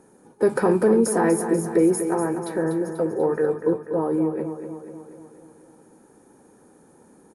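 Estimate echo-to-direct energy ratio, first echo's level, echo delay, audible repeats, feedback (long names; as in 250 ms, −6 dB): −7.0 dB, −9.0 dB, 244 ms, 6, 58%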